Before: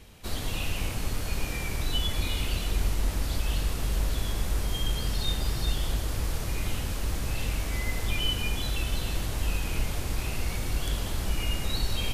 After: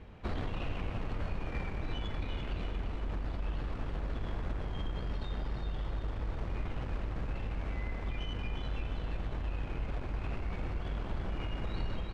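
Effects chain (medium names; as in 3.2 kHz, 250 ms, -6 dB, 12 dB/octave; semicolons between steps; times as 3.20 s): fade out at the end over 0.58 s; low-pass 1.7 kHz 12 dB/octave; peak limiter -28.5 dBFS, peak gain reduction 12 dB; Chebyshev shaper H 3 -19 dB, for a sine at -28.5 dBFS; feedback delay 348 ms, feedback 45%, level -8 dB; gain riding 0.5 s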